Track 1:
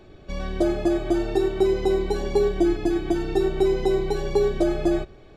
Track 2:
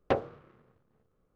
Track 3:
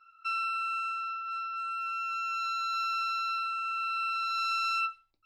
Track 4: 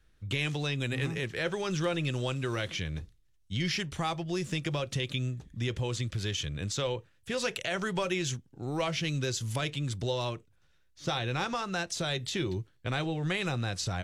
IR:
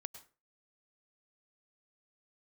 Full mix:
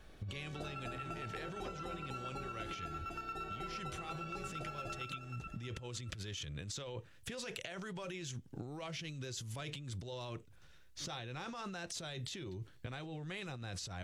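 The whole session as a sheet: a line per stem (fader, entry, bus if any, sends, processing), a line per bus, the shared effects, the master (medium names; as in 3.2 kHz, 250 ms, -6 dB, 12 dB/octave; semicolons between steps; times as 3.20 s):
-16.5 dB, 0.00 s, no send, echo send -13.5 dB, spectral peaks clipped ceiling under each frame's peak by 17 dB
-10.5 dB, 1.55 s, no send, no echo send, none
-8.5 dB, 0.30 s, no send, echo send -11 dB, level rider gain up to 11 dB; static phaser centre 1.8 kHz, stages 4; square tremolo 8.7 Hz, depth 65%, duty 30%
+2.5 dB, 0.00 s, no send, no echo send, peak limiter -26 dBFS, peak gain reduction 8 dB; compressor with a negative ratio -40 dBFS, ratio -1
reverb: none
echo: feedback delay 311 ms, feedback 37%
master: compression 6:1, threshold -41 dBFS, peak gain reduction 13.5 dB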